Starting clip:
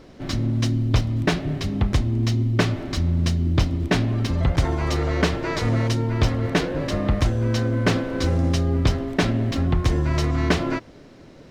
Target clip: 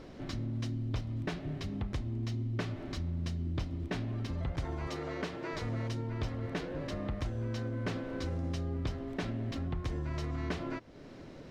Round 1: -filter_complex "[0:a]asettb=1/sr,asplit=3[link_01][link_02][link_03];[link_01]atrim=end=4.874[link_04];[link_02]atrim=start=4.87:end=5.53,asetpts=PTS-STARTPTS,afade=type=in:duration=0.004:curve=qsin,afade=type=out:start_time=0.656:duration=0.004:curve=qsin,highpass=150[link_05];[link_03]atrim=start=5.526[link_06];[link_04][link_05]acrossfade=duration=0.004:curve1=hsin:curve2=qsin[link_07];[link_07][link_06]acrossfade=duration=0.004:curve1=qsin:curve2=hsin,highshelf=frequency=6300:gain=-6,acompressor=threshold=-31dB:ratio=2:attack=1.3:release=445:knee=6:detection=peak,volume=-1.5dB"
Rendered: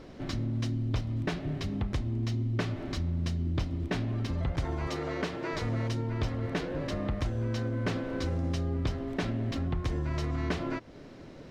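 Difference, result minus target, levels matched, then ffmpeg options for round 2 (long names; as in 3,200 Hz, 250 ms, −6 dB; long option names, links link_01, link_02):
downward compressor: peak gain reduction −4.5 dB
-filter_complex "[0:a]asettb=1/sr,asplit=3[link_01][link_02][link_03];[link_01]atrim=end=4.874[link_04];[link_02]atrim=start=4.87:end=5.53,asetpts=PTS-STARTPTS,afade=type=in:duration=0.004:curve=qsin,afade=type=out:start_time=0.656:duration=0.004:curve=qsin,highpass=150[link_05];[link_03]atrim=start=5.526[link_06];[link_04][link_05]acrossfade=duration=0.004:curve1=hsin:curve2=qsin[link_07];[link_07][link_06]acrossfade=duration=0.004:curve1=qsin:curve2=hsin,highshelf=frequency=6300:gain=-6,acompressor=threshold=-40dB:ratio=2:attack=1.3:release=445:knee=6:detection=peak,volume=-1.5dB"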